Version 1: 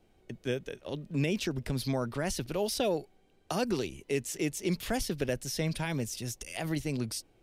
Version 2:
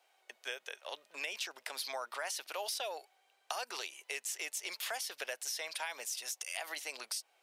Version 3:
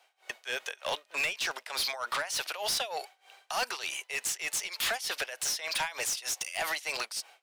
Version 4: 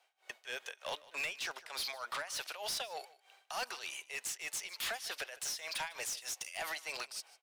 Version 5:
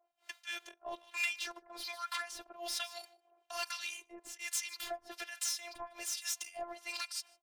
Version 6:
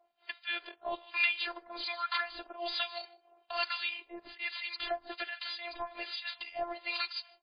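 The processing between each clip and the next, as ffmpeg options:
-af "highpass=f=720:w=0.5412,highpass=f=720:w=1.3066,acompressor=threshold=-39dB:ratio=6,volume=3.5dB"
-filter_complex "[0:a]tremolo=f=3.3:d=0.9,asplit=2[a][b];[b]highpass=f=720:p=1,volume=22dB,asoftclip=type=tanh:threshold=-24dB[c];[a][c]amix=inputs=2:normalize=0,lowpass=f=6.8k:p=1,volume=-6dB,dynaudnorm=f=150:g=3:m=10.5dB,volume=-7.5dB"
-af "aecho=1:1:152:0.1,volume=-7.5dB"
-filter_complex "[0:a]acrossover=split=910[a][b];[a]aeval=exprs='val(0)*(1-1/2+1/2*cos(2*PI*1.2*n/s))':c=same[c];[b]aeval=exprs='val(0)*(1-1/2-1/2*cos(2*PI*1.2*n/s))':c=same[d];[c][d]amix=inputs=2:normalize=0,afftfilt=real='hypot(re,im)*cos(PI*b)':imag='0':win_size=512:overlap=0.75,volume=7.5dB"
-af "volume=6.5dB" -ar 11025 -c:a libmp3lame -b:a 16k

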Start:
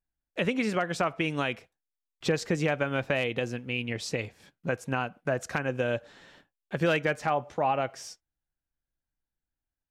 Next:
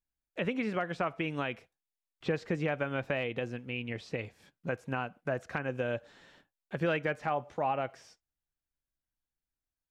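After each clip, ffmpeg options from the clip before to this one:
-filter_complex "[0:a]acrossover=split=3500[a][b];[b]acompressor=threshold=-57dB:ratio=4:attack=1:release=60[c];[a][c]amix=inputs=2:normalize=0,volume=-4.5dB"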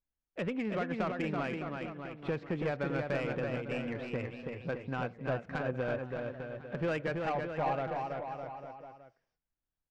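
-af "asoftclip=type=tanh:threshold=-26dB,aecho=1:1:330|610.5|848.9|1052|1224:0.631|0.398|0.251|0.158|0.1,adynamicsmooth=sensitivity=2.5:basefreq=2.2k"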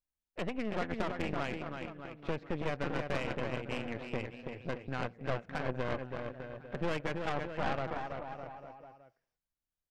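-af "aeval=exprs='0.0891*(cos(1*acos(clip(val(0)/0.0891,-1,1)))-cos(1*PI/2))+0.0355*(cos(4*acos(clip(val(0)/0.0891,-1,1)))-cos(4*PI/2))':c=same,volume=-4dB"

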